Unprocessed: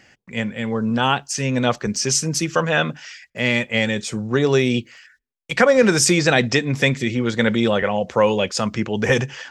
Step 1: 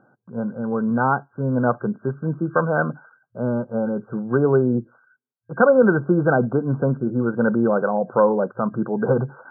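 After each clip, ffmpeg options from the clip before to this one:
-af "afftfilt=real='re*between(b*sr/4096,110,1600)':imag='im*between(b*sr/4096,110,1600)':win_size=4096:overlap=0.75"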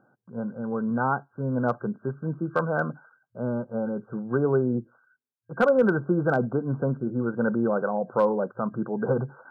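-af "asoftclip=type=hard:threshold=-6.5dB,volume=-5.5dB"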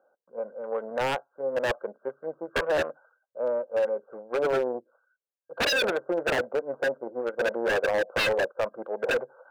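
-af "aeval=exprs='0.266*(cos(1*acos(clip(val(0)/0.266,-1,1)))-cos(1*PI/2))+0.00376*(cos(6*acos(clip(val(0)/0.266,-1,1)))-cos(6*PI/2))+0.0188*(cos(7*acos(clip(val(0)/0.266,-1,1)))-cos(7*PI/2))':c=same,highpass=f=540:t=q:w=4.9,aeval=exprs='0.158*(abs(mod(val(0)/0.158+3,4)-2)-1)':c=same,volume=-3dB"

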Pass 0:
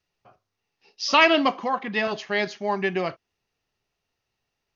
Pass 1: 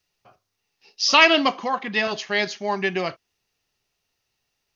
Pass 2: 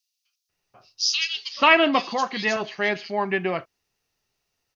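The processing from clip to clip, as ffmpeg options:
-af "highshelf=f=3k:g=9.5"
-filter_complex "[0:a]acrossover=split=3200[a][b];[a]adelay=490[c];[c][b]amix=inputs=2:normalize=0"

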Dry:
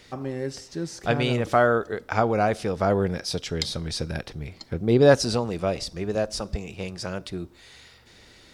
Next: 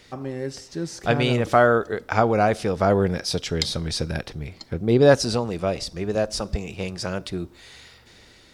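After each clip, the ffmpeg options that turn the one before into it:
-af "dynaudnorm=f=320:g=5:m=3.5dB"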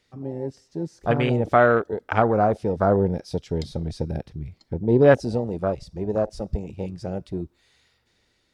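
-af "afwtdn=0.0562"

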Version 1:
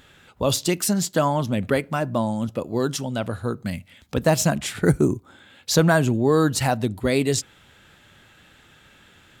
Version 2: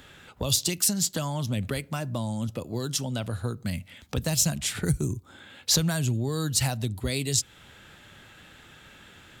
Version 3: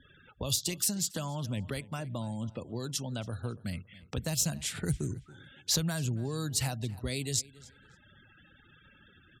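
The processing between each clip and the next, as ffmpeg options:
-filter_complex "[0:a]acrossover=split=130|3000[a][b][c];[b]acompressor=threshold=-34dB:ratio=6[d];[a][d][c]amix=inputs=3:normalize=0,volume=2dB"
-filter_complex "[0:a]afftfilt=real='re*gte(hypot(re,im),0.00562)':imag='im*gte(hypot(re,im),0.00562)':win_size=1024:overlap=0.75,asplit=2[a][b];[b]adelay=279,lowpass=f=4.4k:p=1,volume=-19.5dB,asplit=2[c][d];[d]adelay=279,lowpass=f=4.4k:p=1,volume=0.3[e];[a][c][e]amix=inputs=3:normalize=0,volume=-6dB"

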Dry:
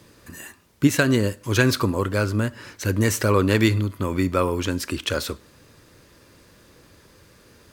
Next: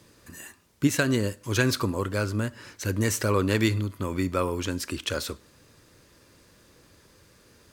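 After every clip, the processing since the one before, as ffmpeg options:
-af "equalizer=f=7.3k:t=o:w=1.5:g=3,volume=-5dB"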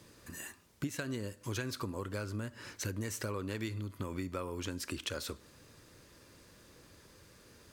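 -af "acompressor=threshold=-33dB:ratio=6,volume=-2dB"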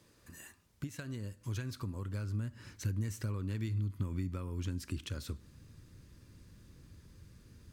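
-af "asubboost=boost=7:cutoff=210,volume=-7dB"

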